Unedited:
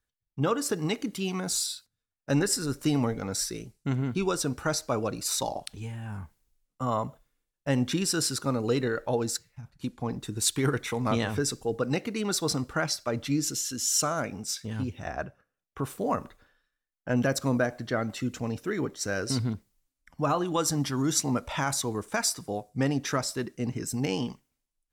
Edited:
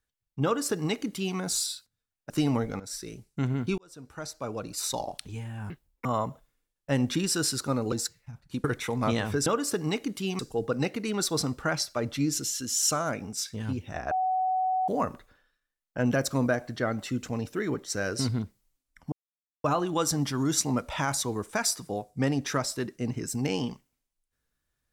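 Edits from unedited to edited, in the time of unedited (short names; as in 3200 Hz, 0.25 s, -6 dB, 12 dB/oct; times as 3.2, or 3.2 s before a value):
0.44–1.37 copy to 11.5
2.3–2.78 cut
3.28–3.74 fade in, from -14.5 dB
4.26–5.68 fade in
6.18–6.83 speed 185%
8.7–9.22 cut
9.94–10.68 cut
15.22–15.99 bleep 748 Hz -23.5 dBFS
20.23 insert silence 0.52 s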